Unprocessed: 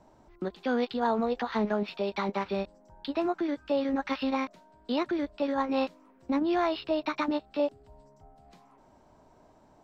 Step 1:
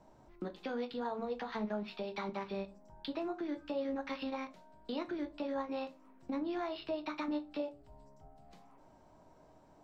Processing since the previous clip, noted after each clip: compression 3:1, threshold -34 dBFS, peak gain reduction 9.5 dB; reverberation RT60 0.30 s, pre-delay 6 ms, DRR 7.5 dB; trim -4 dB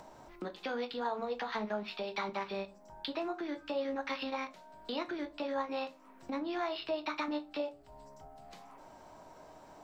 bass shelf 420 Hz -11 dB; in parallel at +0.5 dB: upward compressor, threshold -47 dBFS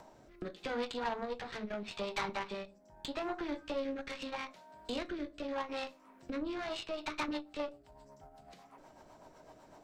Chebyshev shaper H 6 -16 dB, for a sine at -21.5 dBFS; rotary cabinet horn 0.8 Hz, later 8 Hz, at 6.48 s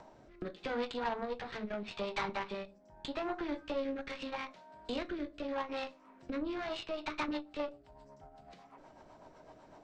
distance through air 85 m; trim +1 dB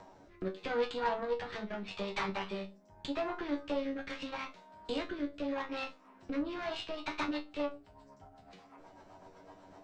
feedback comb 95 Hz, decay 0.21 s, harmonics all, mix 90%; trim +8.5 dB

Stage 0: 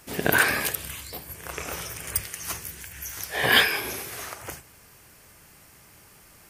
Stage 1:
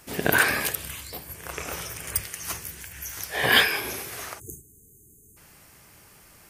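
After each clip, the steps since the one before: spectral selection erased 4.39–5.37 s, 470–6200 Hz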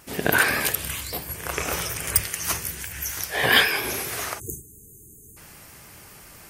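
gain riding within 3 dB 0.5 s; vibrato 7.4 Hz 36 cents; trim +3.5 dB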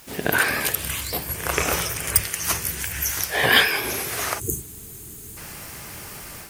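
level rider gain up to 9.5 dB; word length cut 8-bit, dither triangular; trim -1 dB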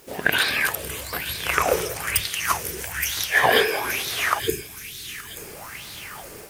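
feedback echo behind a high-pass 872 ms, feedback 32%, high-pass 2.6 kHz, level -8 dB; sweeping bell 1.1 Hz 400–3900 Hz +17 dB; trim -5 dB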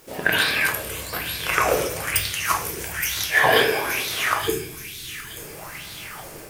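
simulated room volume 85 m³, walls mixed, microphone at 0.57 m; trim -1 dB

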